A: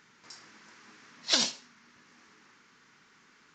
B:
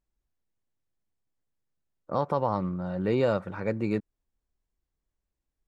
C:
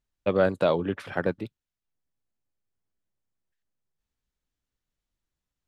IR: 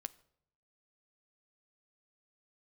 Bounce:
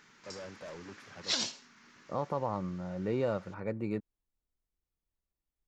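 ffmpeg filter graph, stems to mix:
-filter_complex "[0:a]alimiter=limit=-20dB:level=0:latency=1:release=416,volume=0.5dB[a];[1:a]equalizer=f=5.8k:w=0.5:g=-4.5,bandreject=f=1.6k:w=16,volume=-6.5dB[b];[2:a]asoftclip=type=tanh:threshold=-25.5dB,volume=-16dB[c];[a][b][c]amix=inputs=3:normalize=0"

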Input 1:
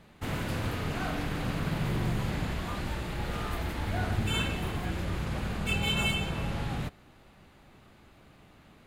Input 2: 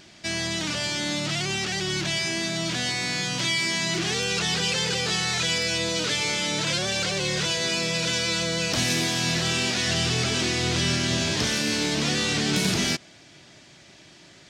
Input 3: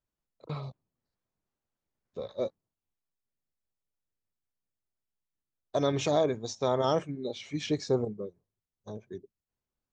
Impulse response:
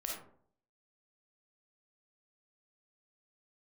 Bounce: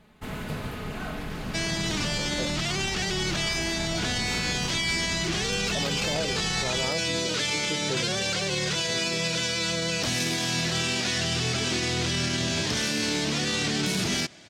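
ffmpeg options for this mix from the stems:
-filter_complex "[0:a]aecho=1:1:4.7:0.41,volume=-2dB[a];[1:a]acontrast=58,adelay=1300,volume=-6dB[b];[2:a]volume=-2dB[c];[a][b][c]amix=inputs=3:normalize=0,alimiter=limit=-18dB:level=0:latency=1:release=23"

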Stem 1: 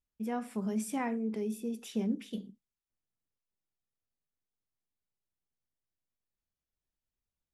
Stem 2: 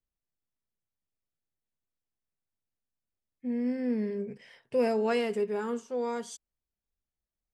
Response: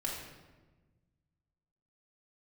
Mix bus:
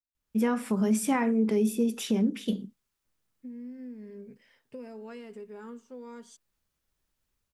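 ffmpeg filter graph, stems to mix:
-filter_complex "[0:a]alimiter=level_in=4.5dB:limit=-24dB:level=0:latency=1:release=329,volume=-4.5dB,adelay=150,volume=2.5dB[a];[1:a]equalizer=f=260:w=3.1:g=8.5,acompressor=threshold=-30dB:ratio=6,volume=-19dB[b];[a][b]amix=inputs=2:normalize=0,equalizer=f=1.3k:t=o:w=0.77:g=2.5,bandreject=f=720:w=14,dynaudnorm=f=110:g=5:m=9dB"

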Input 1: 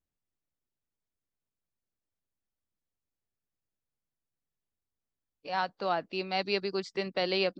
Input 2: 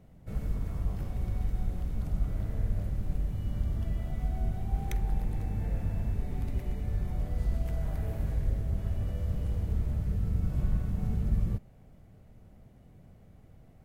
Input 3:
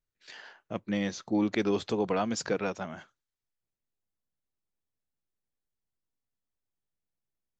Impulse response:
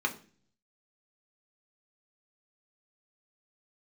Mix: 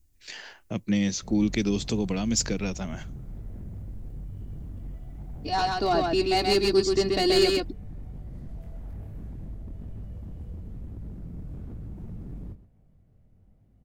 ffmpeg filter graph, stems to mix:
-filter_complex "[0:a]bass=f=250:g=12,treble=f=4k:g=14,aecho=1:1:2.8:0.88,asoftclip=type=tanh:threshold=-19.5dB,volume=1.5dB,asplit=3[a][b][c];[b]volume=-16.5dB[d];[c]volume=-4dB[e];[1:a]flanger=delay=19:depth=5.6:speed=1.1,aeval=exprs='0.0299*(abs(mod(val(0)/0.0299+3,4)-2)-1)':c=same,adelay=950,volume=-10.5dB,asplit=2[f][g];[g]volume=-15dB[h];[2:a]acrossover=split=260|3000[i][j][k];[j]acompressor=threshold=-39dB:ratio=6[l];[i][l][k]amix=inputs=3:normalize=0,aexciter=amount=1.5:drive=8.1:freq=2k,volume=1.5dB[m];[3:a]atrim=start_sample=2205[n];[d][n]afir=irnorm=-1:irlink=0[o];[e][h]amix=inputs=2:normalize=0,aecho=0:1:130:1[p];[a][f][m][o][p]amix=inputs=5:normalize=0,lowshelf=f=400:g=9"

